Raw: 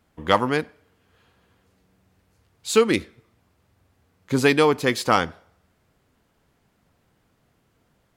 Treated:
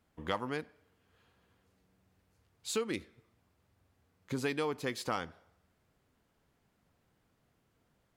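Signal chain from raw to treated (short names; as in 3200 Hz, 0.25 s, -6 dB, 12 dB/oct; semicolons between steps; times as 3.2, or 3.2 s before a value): compressor 2:1, threshold -28 dBFS, peak gain reduction 9.5 dB; gain -8.5 dB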